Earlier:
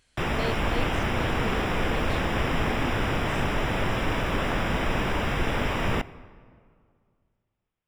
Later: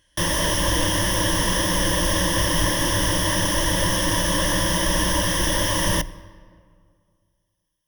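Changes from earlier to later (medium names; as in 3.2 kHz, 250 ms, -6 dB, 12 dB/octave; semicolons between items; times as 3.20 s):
background: remove Savitzky-Golay filter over 25 samples; master: add rippled EQ curve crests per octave 1.2, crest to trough 17 dB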